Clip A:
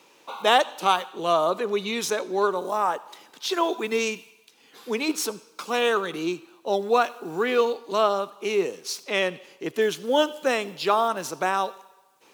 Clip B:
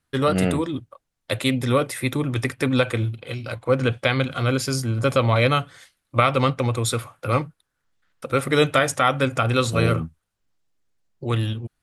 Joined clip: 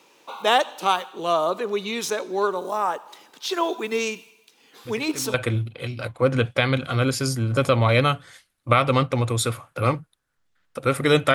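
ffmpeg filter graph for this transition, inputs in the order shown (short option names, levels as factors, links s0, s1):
-filter_complex "[1:a]asplit=2[s0][s1];[0:a]apad=whole_dur=11.34,atrim=end=11.34,atrim=end=5.342[s2];[s1]atrim=start=2.808:end=8.81[s3];[s0]atrim=start=2.32:end=2.81,asetpts=PTS-STARTPTS,volume=0.168,afade=t=in:d=0.004:c=hsin,afade=t=out:st=0.486:d=0.004:c=hsin,adelay=213885S[s4];[s2][s3]acrossfade=d=0.004:c1=hsin:c2=hsin[s5];[s5][s4]amix=inputs=2:normalize=0"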